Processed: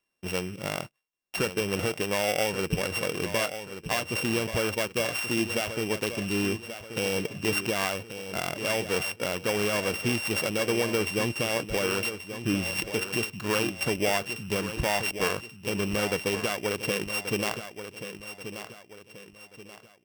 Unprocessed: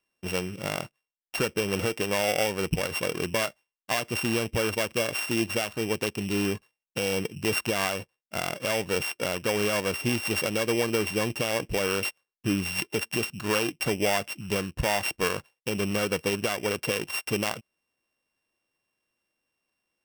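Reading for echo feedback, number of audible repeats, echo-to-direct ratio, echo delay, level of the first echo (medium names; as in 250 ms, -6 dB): 38%, 3, -10.0 dB, 1132 ms, -10.5 dB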